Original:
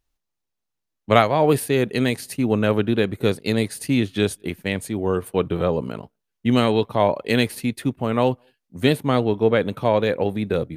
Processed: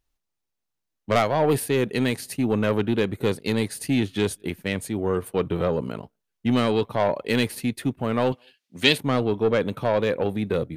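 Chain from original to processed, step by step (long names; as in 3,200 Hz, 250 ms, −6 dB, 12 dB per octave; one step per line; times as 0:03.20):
soft clipping −12 dBFS, distortion −14 dB
0:08.32–0:08.98: meter weighting curve D
level −1 dB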